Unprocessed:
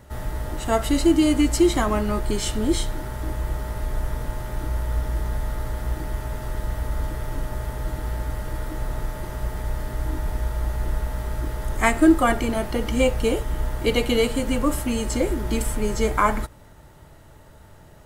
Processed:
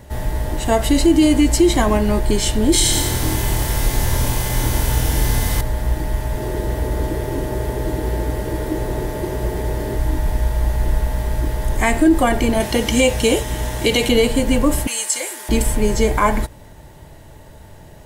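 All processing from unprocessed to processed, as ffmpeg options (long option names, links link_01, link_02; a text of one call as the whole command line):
ffmpeg -i in.wav -filter_complex "[0:a]asettb=1/sr,asplit=3[link_01][link_02][link_03];[link_01]atrim=end=2.724[link_04];[link_02]atrim=start=2.72:end=5.61,asetpts=PTS-STARTPTS,afade=type=in:duration=0.004:curve=qsin,afade=type=out:start_time=2.886:duration=0.004:curve=qsin,highshelf=frequency=2300:gain=10.5,asplit=2[link_05][link_06];[link_06]adelay=25,volume=-2dB[link_07];[link_05][link_07]amix=inputs=2:normalize=0,atrim=end_sample=127449,aecho=1:1:85|170|255|340|425|510|595:0.631|0.334|0.177|0.0939|0.0498|0.0264|0.014,atrim=end_sample=127449[link_08];[link_03]atrim=start=5.606[link_09];[link_04][link_08]acrossfade=duration=0.004:curve1=hsin:curve2=qsin[link_10];[link_10][link_09]acrossfade=duration=0.004:curve1=qsin:curve2=hsin,asettb=1/sr,asplit=3[link_11][link_12][link_13];[link_11]atrim=end=6.374[link_14];[link_12]atrim=start=6.37:end=9.98,asetpts=PTS-STARTPTS,afade=type=in:duration=0.004:curve=qsin,afade=type=out:start_time=3.606:duration=0.004:curve=qsin,highpass=49,equalizer=frequency=380:width_type=o:width=0.8:gain=11[link_15];[link_13]atrim=start=9.976[link_16];[link_14][link_15]acrossfade=duration=0.004:curve1=hsin:curve2=qsin[link_17];[link_17][link_16]acrossfade=duration=0.004:curve1=qsin:curve2=hsin,asettb=1/sr,asplit=3[link_18][link_19][link_20];[link_18]atrim=end=12.604[link_21];[link_19]atrim=start=12.6:end=14.09,asetpts=PTS-STARTPTS,afade=type=in:duration=0.004:curve=qsin,afade=type=out:start_time=1.486:duration=0.004:curve=qsin,highpass=63,equalizer=frequency=6000:width=0.4:gain=8.5,bandreject=frequency=4600:width=12[link_22];[link_20]atrim=start=14.086[link_23];[link_21][link_22]acrossfade=duration=0.004:curve1=hsin:curve2=qsin[link_24];[link_24][link_23]acrossfade=duration=0.004:curve1=qsin:curve2=hsin,asettb=1/sr,asplit=3[link_25][link_26][link_27];[link_25]atrim=end=14.874[link_28];[link_26]atrim=start=14.87:end=15.49,asetpts=PTS-STARTPTS,afade=type=in:duration=0.004:curve=qsin,afade=type=out:start_time=0.616:duration=0.004:curve=qsin,highpass=1100,equalizer=frequency=9000:width_type=o:width=1.1:gain=10[link_29];[link_27]atrim=start=15.486[link_30];[link_28][link_29]acrossfade=duration=0.004:curve1=hsin:curve2=qsin[link_31];[link_31][link_30]acrossfade=duration=0.004:curve1=qsin:curve2=hsin,equalizer=frequency=1300:width=6.8:gain=-14,alimiter=level_in=11dB:limit=-1dB:release=50:level=0:latency=1,volume=-4dB" out.wav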